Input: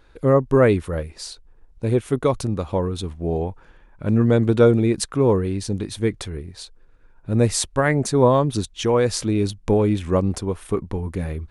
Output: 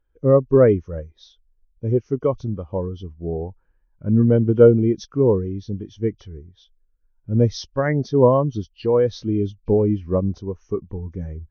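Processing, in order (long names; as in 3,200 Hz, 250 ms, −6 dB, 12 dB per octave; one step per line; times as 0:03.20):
hearing-aid frequency compression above 2,300 Hz 1.5 to 1
every bin expanded away from the loudest bin 1.5 to 1
level +2.5 dB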